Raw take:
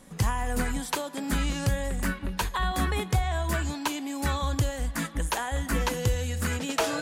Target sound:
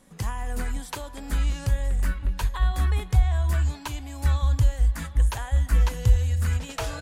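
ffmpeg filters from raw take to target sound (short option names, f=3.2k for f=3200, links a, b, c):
-filter_complex "[0:a]asplit=2[a][b];[b]adelay=758,volume=-16dB,highshelf=f=4k:g=-17.1[c];[a][c]amix=inputs=2:normalize=0,asubboost=boost=9.5:cutoff=84,volume=-5dB"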